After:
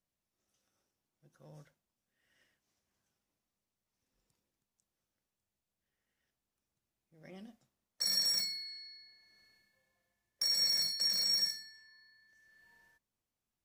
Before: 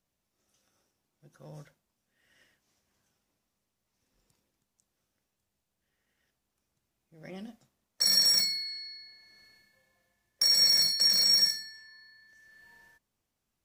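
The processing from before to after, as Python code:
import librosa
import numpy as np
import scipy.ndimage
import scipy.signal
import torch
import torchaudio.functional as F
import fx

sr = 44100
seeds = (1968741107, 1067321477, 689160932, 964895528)

y = fx.quant_float(x, sr, bits=8)
y = y * librosa.db_to_amplitude(-8.0)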